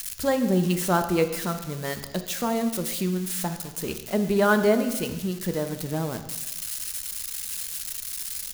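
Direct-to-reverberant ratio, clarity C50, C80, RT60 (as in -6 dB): 8.0 dB, 10.0 dB, 11.5 dB, 1.1 s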